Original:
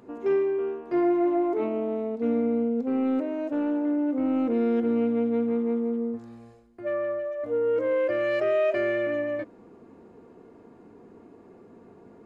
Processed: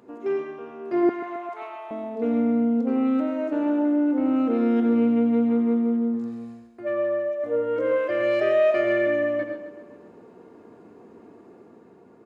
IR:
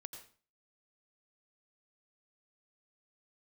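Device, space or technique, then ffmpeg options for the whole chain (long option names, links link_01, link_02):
far laptop microphone: -filter_complex "[1:a]atrim=start_sample=2205[link_01];[0:a][link_01]afir=irnorm=-1:irlink=0,highpass=frequency=160:poles=1,dynaudnorm=framelen=120:gausssize=13:maxgain=3dB,asettb=1/sr,asplit=3[link_02][link_03][link_04];[link_02]atrim=end=1.094[link_05];[link_03]atrim=start=1.09:end=1.91,asetpts=PTS-STARTPTS,afade=type=in:duration=0.004:curve=qsin,afade=type=out:start_time=0.816:duration=0.004:curve=qsin,highpass=frequency=800:width=0.5412,highpass=frequency=800:width=1.3066[link_06];[link_04]atrim=start=1.906[link_07];[link_05][link_06]acrossfade=duration=0.004:curve1=hsin:curve2=qsin[link_08];[link_08][link_07]acrossfade=duration=0.004:curve1=qsin:curve2=hsin,aecho=1:1:133|266|399|532|665|798:0.224|0.123|0.0677|0.0372|0.0205|0.0113,volume=5dB"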